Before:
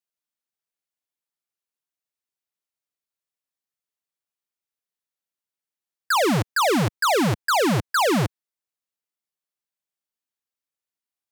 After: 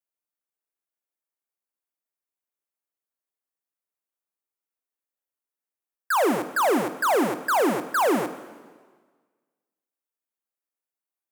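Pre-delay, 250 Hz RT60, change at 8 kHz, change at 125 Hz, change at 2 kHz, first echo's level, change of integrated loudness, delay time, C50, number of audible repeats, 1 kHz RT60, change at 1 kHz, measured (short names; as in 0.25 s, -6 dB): 6 ms, 1.5 s, -5.0 dB, -17.0 dB, -3.0 dB, none, -2.0 dB, none, 12.5 dB, none, 1.5 s, -1.0 dB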